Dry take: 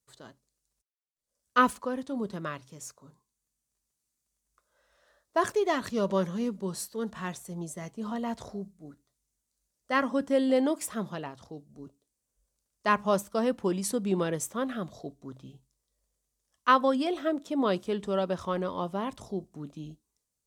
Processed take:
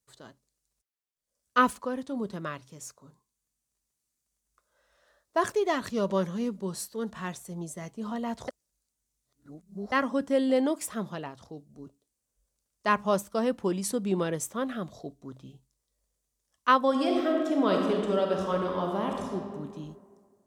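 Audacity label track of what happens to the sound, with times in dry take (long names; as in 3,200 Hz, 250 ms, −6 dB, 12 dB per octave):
8.480000	9.920000	reverse
16.850000	19.350000	thrown reverb, RT60 1.9 s, DRR 0.5 dB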